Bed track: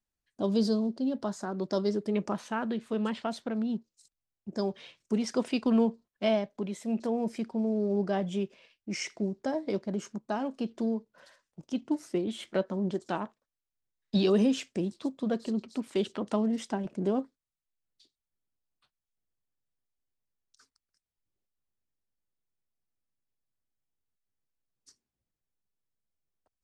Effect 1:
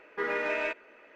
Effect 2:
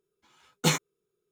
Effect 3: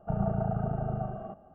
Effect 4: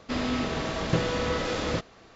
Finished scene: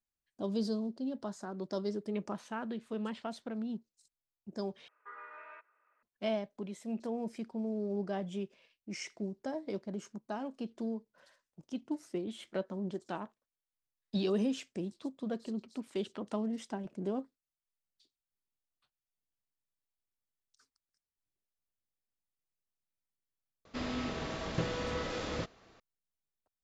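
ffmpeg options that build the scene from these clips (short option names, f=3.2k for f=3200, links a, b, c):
-filter_complex "[0:a]volume=-7dB[a];[1:a]bandpass=f=1.2k:t=q:w=4.6:csg=0[b];[a]asplit=2[c][d];[c]atrim=end=4.884[e];[b]atrim=end=1.15,asetpts=PTS-STARTPTS,volume=-9dB[f];[d]atrim=start=6.026[g];[4:a]atrim=end=2.15,asetpts=PTS-STARTPTS,volume=-8.5dB,afade=t=in:d=0.004:c=hsin,afade=t=out:st=2.146:d=0.004:c=hsin,adelay=23650[h];[e][f]acrossfade=d=0.004:c1=hsin:c2=hsin[i];[i][g]acrossfade=d=0.004:c1=hsin:c2=hsin[j];[j][h]amix=inputs=2:normalize=0"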